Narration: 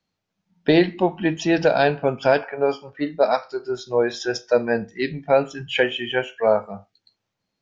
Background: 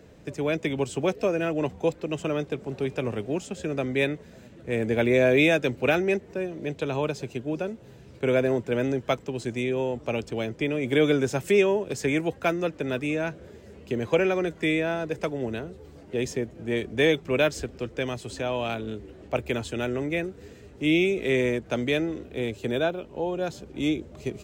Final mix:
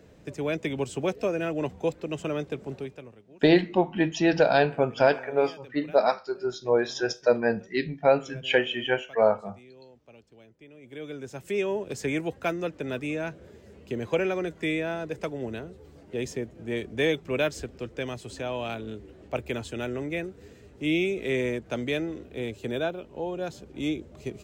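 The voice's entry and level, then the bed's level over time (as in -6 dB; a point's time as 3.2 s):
2.75 s, -3.0 dB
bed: 2.72 s -2.5 dB
3.22 s -24.5 dB
10.67 s -24.5 dB
11.81 s -3.5 dB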